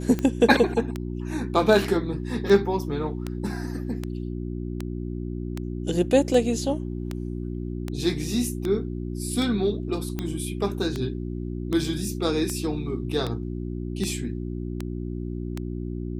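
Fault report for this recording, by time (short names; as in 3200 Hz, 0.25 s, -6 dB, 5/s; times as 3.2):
hum 60 Hz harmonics 6 -31 dBFS
tick 78 rpm -15 dBFS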